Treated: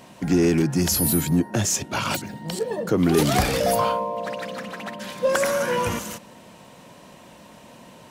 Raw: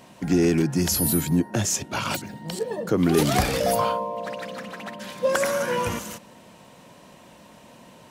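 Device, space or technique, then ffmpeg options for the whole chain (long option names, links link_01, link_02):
parallel distortion: -filter_complex "[0:a]asplit=2[link_01][link_02];[link_02]asoftclip=type=hard:threshold=-25dB,volume=-10dB[link_03];[link_01][link_03]amix=inputs=2:normalize=0"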